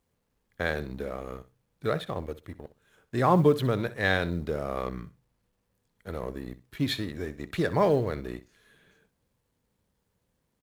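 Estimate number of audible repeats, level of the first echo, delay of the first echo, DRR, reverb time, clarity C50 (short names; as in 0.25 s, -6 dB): 2, -16.0 dB, 63 ms, none, none, none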